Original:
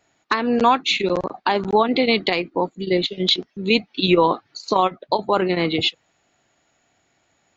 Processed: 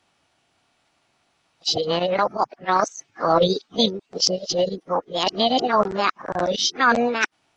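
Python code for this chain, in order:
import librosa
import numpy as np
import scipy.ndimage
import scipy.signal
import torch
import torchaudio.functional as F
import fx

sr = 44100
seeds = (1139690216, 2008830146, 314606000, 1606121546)

y = x[::-1].copy()
y = fx.formant_shift(y, sr, semitones=6)
y = y * 10.0 ** (-1.5 / 20.0)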